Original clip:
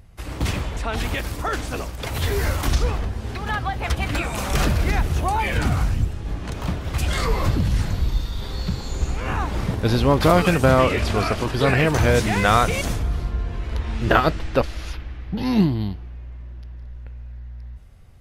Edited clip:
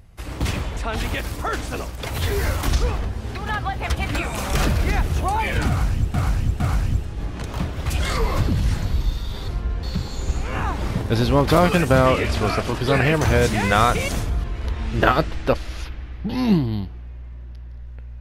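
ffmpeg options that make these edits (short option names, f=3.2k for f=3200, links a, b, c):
-filter_complex "[0:a]asplit=6[a][b][c][d][e][f];[a]atrim=end=6.142[g];[b]atrim=start=5.678:end=6.142[h];[c]atrim=start=5.678:end=8.562[i];[d]atrim=start=13.168:end=13.522[j];[e]atrim=start=8.558:end=13.172[k];[f]atrim=start=13.518[l];[g][h]acrossfade=d=0.004:c1=hsin:c2=hsin[m];[m][i]acrossfade=d=0.004:c1=hsin:c2=hsin[n];[n][j]acrossfade=d=0.004:c1=hsin:c2=hsin[o];[o][k]acrossfade=d=0.004:c1=hsin:c2=hsin[p];[p][l]acrossfade=d=0.004:c1=hsin:c2=hsin"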